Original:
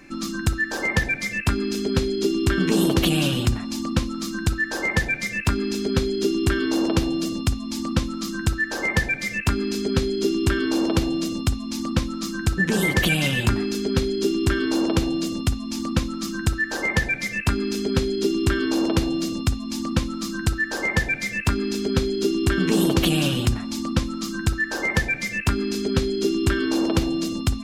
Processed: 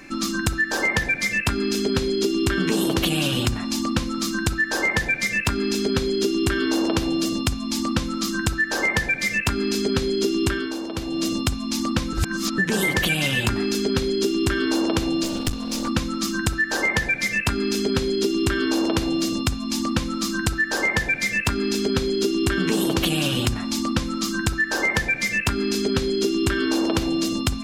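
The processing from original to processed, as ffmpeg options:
-filter_complex "[0:a]asettb=1/sr,asplit=3[a][b][c];[a]atrim=end=15.234[d];[b]atrim=start=15.23:end=15.88,asetpts=PTS-STARTPTS,afade=t=in:d=0.004:c=qsin,afade=t=out:st=0.646:d=0.004:c=qsin,aeval=exprs='clip(val(0),-1,0.0299)':c=same[e];[c]atrim=start=15.876[f];[d][e]acrossfade=d=0.004:c1=hsin:c2=qsin[g];[g][f]acrossfade=d=0.004:c1=qsin:c2=hsin,asplit=5[h][i][j][k][l];[h]atrim=end=10.82,asetpts=PTS-STARTPTS,afade=t=out:st=10.47:d=0.35:c=qua:silence=0.251189[m];[i]atrim=start=10.82:end=10.92,asetpts=PTS-STARTPTS,volume=-12dB[n];[j]atrim=start=10.92:end=12.132,asetpts=PTS-STARTPTS,afade=t=in:d=0.35:c=qua:silence=0.251189[o];[k]atrim=start=12.128:end=12.582,asetpts=PTS-STARTPTS,areverse[p];[l]atrim=start=12.578[q];[m][n][o]concat=n=3:v=0:a=1[r];[r][p]acrossfade=d=0.004:c1=hsin:c2=hsin[s];[s][q]acrossfade=d=0.004:c1=hsin:c2=hsin,lowshelf=f=380:g=-4.5,bandreject=f=171.8:t=h:w=4,bandreject=f=343.6:t=h:w=4,bandreject=f=515.4:t=h:w=4,bandreject=f=687.2:t=h:w=4,bandreject=f=859:t=h:w=4,bandreject=f=1.0308k:t=h:w=4,bandreject=f=1.2026k:t=h:w=4,bandreject=f=1.3744k:t=h:w=4,bandreject=f=1.5462k:t=h:w=4,bandreject=f=1.718k:t=h:w=4,bandreject=f=1.8898k:t=h:w=4,bandreject=f=2.0616k:t=h:w=4,bandreject=f=2.2334k:t=h:w=4,bandreject=f=2.4052k:t=h:w=4,acompressor=threshold=-24dB:ratio=6,volume=6dB"

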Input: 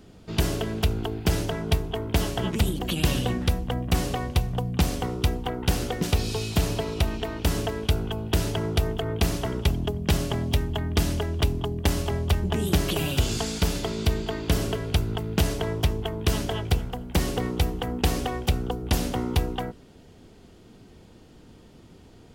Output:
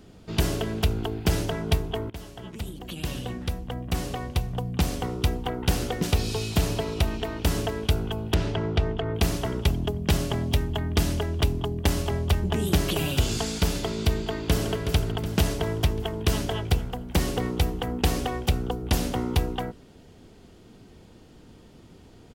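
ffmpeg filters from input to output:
-filter_complex "[0:a]asettb=1/sr,asplit=3[a][b][c];[a]atrim=end=8.344[d];[b]atrim=start=8.34:end=9.15,asetpts=PTS-STARTPTS,afade=t=in:d=0.004:c=qsin,afade=t=out:st=0.806:d=0.004:c=qsin,lowpass=3.7k[e];[c]atrim=start=9.146[f];[d][e]acrossfade=d=0.004:c1=hsin:c2=qsin[g];[g][f]acrossfade=d=0.004:c1=qsin:c2=hsin,asplit=2[h][i];[i]afade=t=in:st=14.13:d=0.01,afade=t=out:st=14.74:d=0.01,aecho=0:1:370|740|1110|1480|1850|2220|2590|2960:0.375837|0.225502|0.135301|0.0811809|0.0487085|0.0292251|0.0175351|0.010521[j];[h][j]amix=inputs=2:normalize=0,asplit=2[k][l];[k]atrim=end=2.1,asetpts=PTS-STARTPTS,afade=t=out:st=2.096:d=0.004:c=hsin:silence=0.141254[m];[l]atrim=start=2.1,asetpts=PTS-STARTPTS,afade=t=in:d=3.4:silence=0.141254[n];[m][n]concat=n=2:v=0:a=1"

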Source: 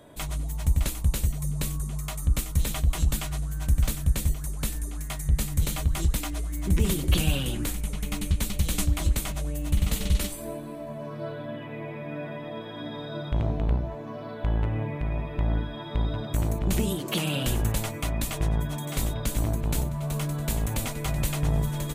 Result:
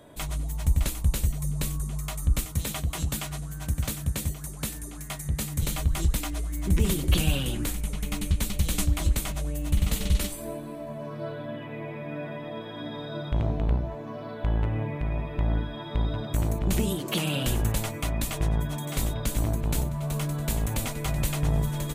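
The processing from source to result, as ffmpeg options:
-filter_complex "[0:a]asettb=1/sr,asplit=3[a][b][c];[a]atrim=end=2.454[d];[b]atrim=start=2.45:end=5.63,asetpts=PTS-STARTPTS,afade=t=in:d=0.004:c=qsin,afade=t=out:st=3.176:d=0.004:c=qsin,highpass=84[e];[c]atrim=start=5.626[f];[d][e]acrossfade=d=0.004:c1=hsin:c2=qsin[g];[g][f]acrossfade=d=0.004:c1=qsin:c2=hsin"

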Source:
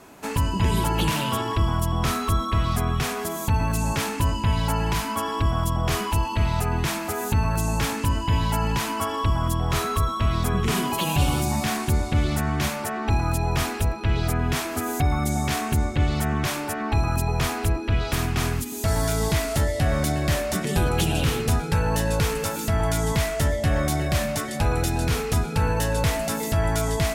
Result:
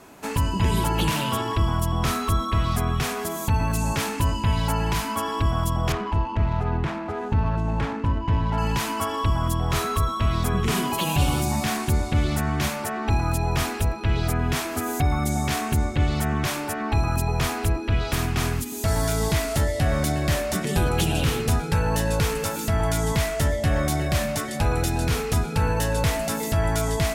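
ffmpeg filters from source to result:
-filter_complex "[0:a]asettb=1/sr,asplit=3[a][b][c];[a]atrim=end=5.924[d];[b]atrim=start=5.92:end=8.58,asetpts=PTS-STARTPTS,afade=t=in:d=0.004:c=qsin,afade=t=out:st=2.656:d=0.004:c=qsin,adynamicsmooth=sensitivity=1:basefreq=1.2k[e];[c]atrim=start=8.576[f];[d][e]acrossfade=d=0.004:c1=hsin:c2=qsin[g];[g][f]acrossfade=d=0.004:c1=qsin:c2=hsin"

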